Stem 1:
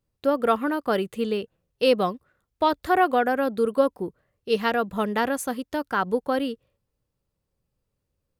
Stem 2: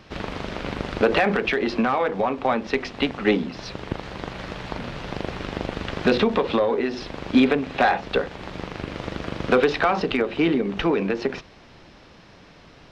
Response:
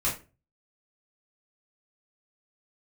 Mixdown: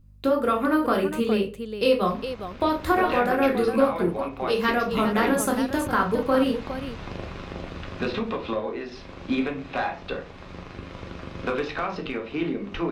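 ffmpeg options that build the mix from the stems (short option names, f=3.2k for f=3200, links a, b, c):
-filter_complex "[0:a]acompressor=threshold=-24dB:ratio=6,aeval=exprs='val(0)+0.00126*(sin(2*PI*50*n/s)+sin(2*PI*2*50*n/s)/2+sin(2*PI*3*50*n/s)/3+sin(2*PI*4*50*n/s)/4+sin(2*PI*5*50*n/s)/5)':c=same,volume=0dB,asplit=3[a][b][c];[b]volume=-4.5dB[d];[c]volume=-5dB[e];[1:a]dynaudnorm=f=400:g=5:m=11.5dB,adelay=1950,volume=-18.5dB,asplit=2[f][g];[g]volume=-7.5dB[h];[2:a]atrim=start_sample=2205[i];[d][h]amix=inputs=2:normalize=0[j];[j][i]afir=irnorm=-1:irlink=0[k];[e]aecho=0:1:411:1[l];[a][f][k][l]amix=inputs=4:normalize=0"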